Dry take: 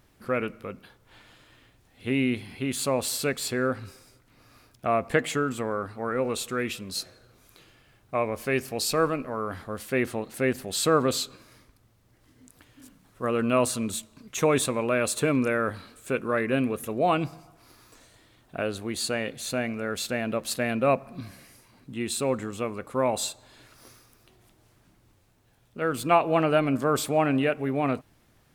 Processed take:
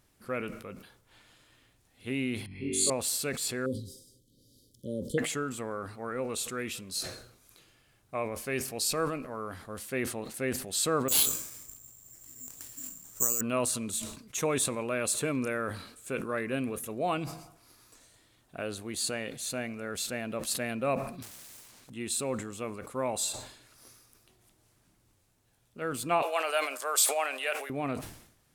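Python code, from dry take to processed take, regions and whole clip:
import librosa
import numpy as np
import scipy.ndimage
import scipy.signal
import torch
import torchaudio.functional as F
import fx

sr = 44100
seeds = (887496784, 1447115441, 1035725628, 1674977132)

y = fx.chain(x, sr, fx.envelope_sharpen(power=2.0),
    fx.room_flutter(wall_m=3.6, rt60_s=1.4), at=(2.46, 2.9))
y = fx.chain(y, sr, fx.brickwall_bandstop(low_hz=590.0, high_hz=3000.0),
    fx.peak_eq(hz=210.0, db=4.5, octaves=1.5), at=(3.66, 5.18))
y = fx.chain(y, sr, fx.high_shelf(hz=7600.0, db=-11.5),
    fx.over_compress(threshold_db=-30.0, ratio=-0.5),
    fx.resample_bad(factor=6, down='none', up='zero_stuff'), at=(11.08, 13.41))
y = fx.chain(y, sr, fx.self_delay(depth_ms=0.94),
    fx.spectral_comp(ratio=2.0), at=(21.22, 21.9))
y = fx.chain(y, sr, fx.highpass(hz=540.0, slope=24),
    fx.high_shelf(hz=2300.0, db=10.0), at=(26.22, 27.7))
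y = fx.peak_eq(y, sr, hz=9200.0, db=8.0, octaves=1.8)
y = fx.sustainer(y, sr, db_per_s=81.0)
y = y * 10.0 ** (-7.5 / 20.0)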